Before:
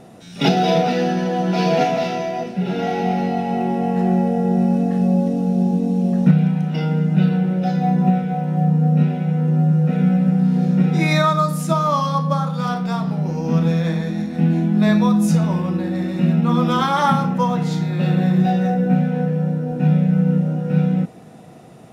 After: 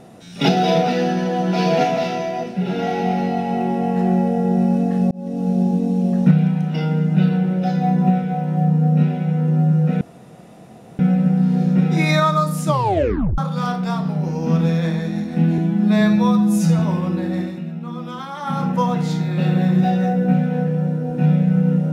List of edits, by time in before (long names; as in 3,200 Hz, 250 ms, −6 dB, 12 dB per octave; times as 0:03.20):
0:05.11–0:05.49: fade in
0:10.01: splice in room tone 0.98 s
0:11.68: tape stop 0.72 s
0:14.60–0:15.41: time-stretch 1.5×
0:16.01–0:17.28: duck −12.5 dB, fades 0.22 s